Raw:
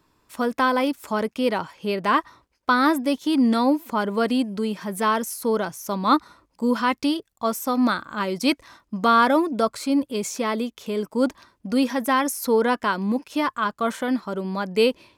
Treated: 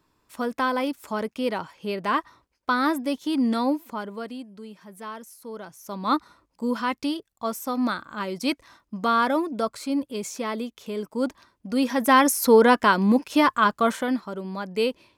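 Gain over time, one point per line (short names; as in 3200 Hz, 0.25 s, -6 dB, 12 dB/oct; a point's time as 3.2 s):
3.71 s -4 dB
4.41 s -15.5 dB
5.5 s -15.5 dB
6.1 s -4.5 dB
11.68 s -4.5 dB
12.17 s +4.5 dB
13.72 s +4.5 dB
14.34 s -5 dB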